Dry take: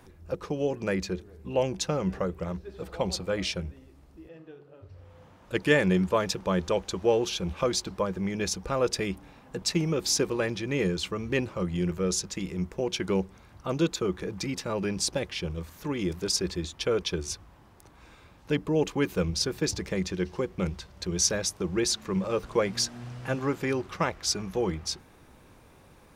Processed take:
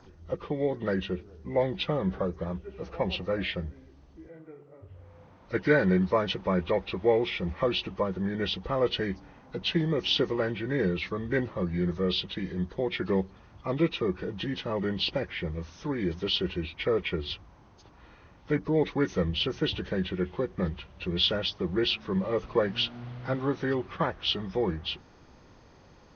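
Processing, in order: knee-point frequency compression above 1.1 kHz 1.5:1

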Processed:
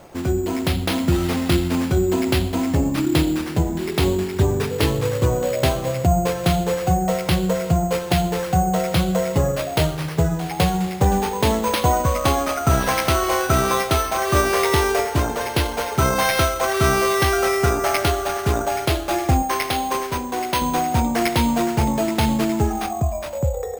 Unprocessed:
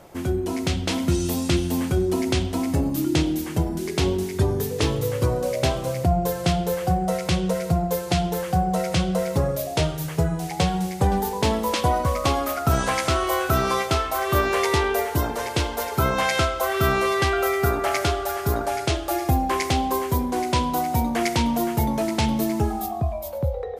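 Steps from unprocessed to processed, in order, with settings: 19.42–20.62 s: bass shelf 290 Hz -12 dB; careless resampling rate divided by 6×, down none, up hold; trim +3 dB

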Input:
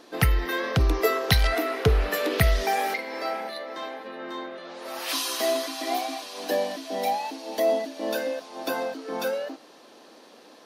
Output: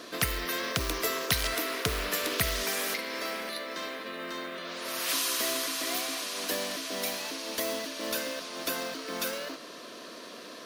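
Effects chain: short-mantissa float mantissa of 4-bit; Butterworth band-stop 820 Hz, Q 3.5; spectrum-flattening compressor 2:1; trim -2.5 dB

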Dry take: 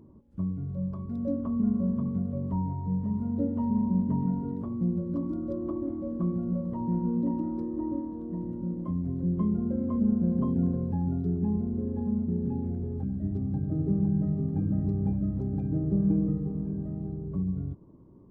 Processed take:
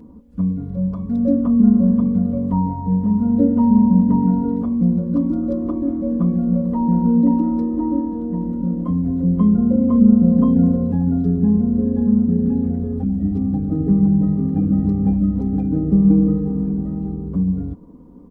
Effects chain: comb 4.1 ms, depth 96%; trim +8.5 dB

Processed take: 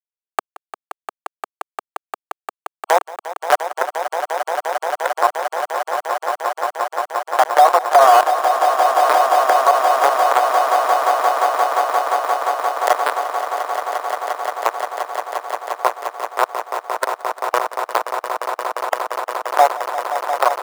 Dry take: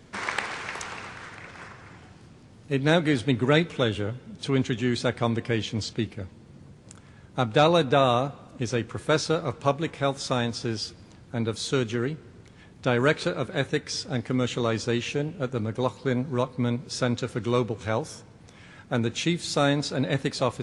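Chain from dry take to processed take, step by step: cascade formant filter a; decimation with a swept rate 9×, swing 60% 1.5 Hz; upward compressor, threshold -43 dBFS; dynamic bell 2.5 kHz, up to +5 dB, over -60 dBFS, Q 2; bit crusher 5-bit; spectral noise reduction 23 dB; compression 2:1, threshold -46 dBFS, peak gain reduction 13.5 dB; inverse Chebyshev high-pass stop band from 170 Hz, stop band 50 dB; resonant high shelf 1.8 kHz -11 dB, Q 1.5; echo with a slow build-up 175 ms, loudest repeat 8, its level -13 dB; loudness maximiser +34.5 dB; trim -1 dB

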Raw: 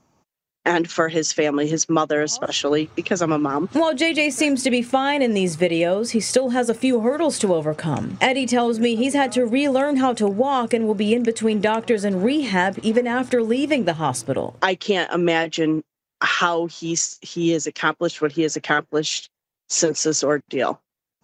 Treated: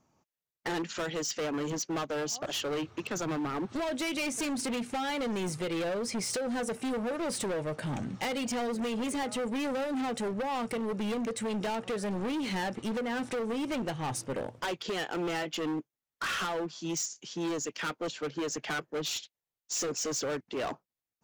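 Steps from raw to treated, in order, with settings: overload inside the chain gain 22 dB; trim -8 dB

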